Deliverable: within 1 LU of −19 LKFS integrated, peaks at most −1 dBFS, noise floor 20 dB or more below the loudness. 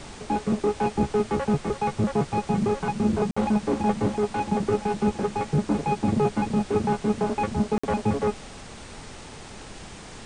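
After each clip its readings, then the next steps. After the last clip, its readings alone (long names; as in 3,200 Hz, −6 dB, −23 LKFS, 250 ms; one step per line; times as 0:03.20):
number of dropouts 2; longest dropout 55 ms; background noise floor −42 dBFS; target noise floor −46 dBFS; integrated loudness −25.5 LKFS; sample peak −10.0 dBFS; target loudness −19.0 LKFS
→ repair the gap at 0:03.31/0:07.78, 55 ms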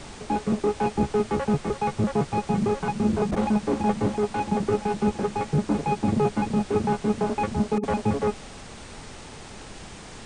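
number of dropouts 0; background noise floor −42 dBFS; target noise floor −46 dBFS
→ noise reduction from a noise print 6 dB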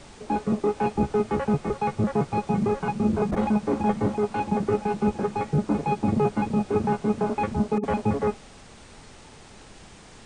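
background noise floor −48 dBFS; integrated loudness −25.5 LKFS; sample peak −10.5 dBFS; target loudness −19.0 LKFS
→ level +6.5 dB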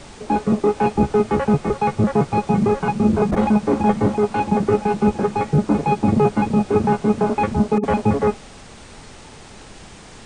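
integrated loudness −19.0 LKFS; sample peak −4.0 dBFS; background noise floor −41 dBFS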